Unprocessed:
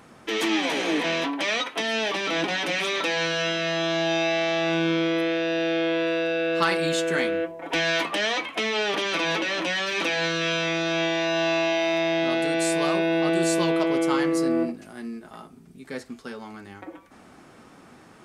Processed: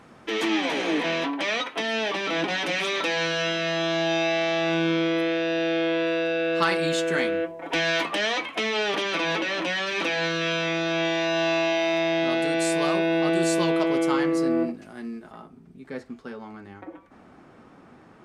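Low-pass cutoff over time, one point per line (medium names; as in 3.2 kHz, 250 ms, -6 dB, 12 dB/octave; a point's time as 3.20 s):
low-pass 6 dB/octave
4.4 kHz
from 2.50 s 8.5 kHz
from 9.03 s 4.9 kHz
from 11.05 s 10 kHz
from 14.11 s 4.2 kHz
from 15.32 s 1.7 kHz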